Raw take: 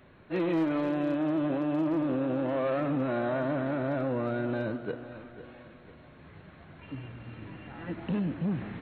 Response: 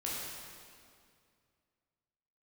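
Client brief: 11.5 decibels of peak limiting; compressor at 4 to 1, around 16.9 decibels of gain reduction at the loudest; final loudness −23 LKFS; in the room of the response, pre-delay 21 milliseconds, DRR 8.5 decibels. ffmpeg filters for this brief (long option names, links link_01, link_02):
-filter_complex "[0:a]acompressor=threshold=-47dB:ratio=4,alimiter=level_in=21.5dB:limit=-24dB:level=0:latency=1,volume=-21.5dB,asplit=2[link_01][link_02];[1:a]atrim=start_sample=2205,adelay=21[link_03];[link_02][link_03]afir=irnorm=-1:irlink=0,volume=-12dB[link_04];[link_01][link_04]amix=inputs=2:normalize=0,volume=29.5dB"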